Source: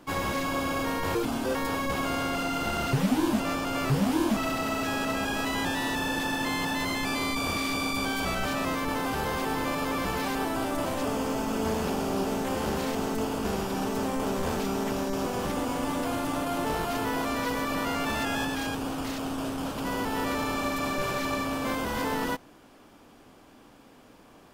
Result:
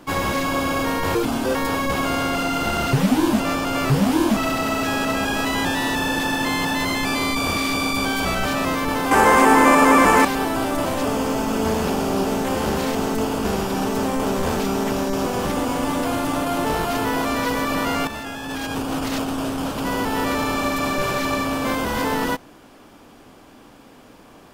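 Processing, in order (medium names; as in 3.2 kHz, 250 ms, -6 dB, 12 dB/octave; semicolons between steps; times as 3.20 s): 9.11–10.25 s: ten-band graphic EQ 125 Hz -8 dB, 250 Hz +9 dB, 500 Hz +5 dB, 1 kHz +9 dB, 2 kHz +9 dB, 4 kHz -5 dB, 8 kHz +11 dB; 18.07–19.30 s: compressor with a negative ratio -33 dBFS, ratio -0.5; trim +7 dB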